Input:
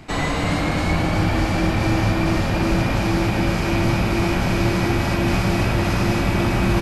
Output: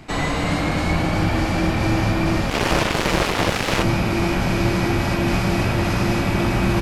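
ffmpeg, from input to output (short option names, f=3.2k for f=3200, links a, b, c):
-filter_complex "[0:a]bandreject=f=50:t=h:w=6,bandreject=f=100:t=h:w=6,asplit=3[a][b][c];[a]afade=t=out:st=2.49:d=0.02[d];[b]aeval=exprs='0.422*(cos(1*acos(clip(val(0)/0.422,-1,1)))-cos(1*PI/2))+0.15*(cos(7*acos(clip(val(0)/0.422,-1,1)))-cos(7*PI/2))':c=same,afade=t=in:st=2.49:d=0.02,afade=t=out:st=3.82:d=0.02[e];[c]afade=t=in:st=3.82:d=0.02[f];[d][e][f]amix=inputs=3:normalize=0"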